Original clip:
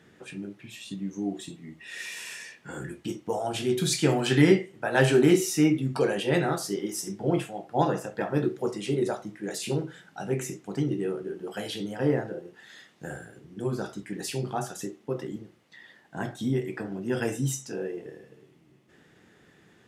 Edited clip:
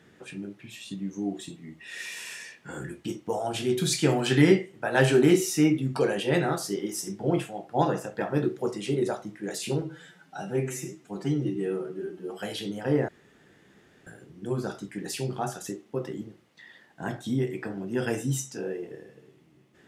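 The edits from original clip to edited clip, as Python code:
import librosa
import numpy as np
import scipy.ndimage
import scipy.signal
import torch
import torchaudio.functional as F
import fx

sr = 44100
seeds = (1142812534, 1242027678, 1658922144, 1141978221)

y = fx.edit(x, sr, fx.stretch_span(start_s=9.82, length_s=1.71, factor=1.5),
    fx.room_tone_fill(start_s=12.23, length_s=0.98), tone=tone)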